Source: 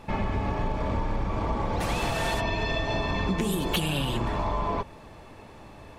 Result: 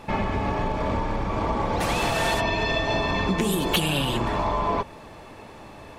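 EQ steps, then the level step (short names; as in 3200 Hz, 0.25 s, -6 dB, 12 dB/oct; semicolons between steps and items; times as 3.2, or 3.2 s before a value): low shelf 140 Hz -6.5 dB; +5.0 dB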